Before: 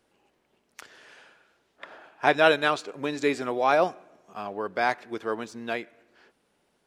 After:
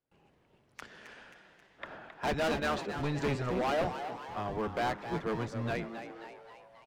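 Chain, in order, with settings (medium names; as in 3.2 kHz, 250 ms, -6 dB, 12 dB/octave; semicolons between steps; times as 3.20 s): octave divider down 1 oct, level +3 dB; treble shelf 5 kHz -10.5 dB; in parallel at +1 dB: compression, threshold -34 dBFS, peak gain reduction 18.5 dB; on the sum: hard clipper -21.5 dBFS, distortion -6 dB; on a send: frequency-shifting echo 267 ms, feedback 56%, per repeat +110 Hz, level -10 dB; on the sum: gate with hold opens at -54 dBFS; trim -6 dB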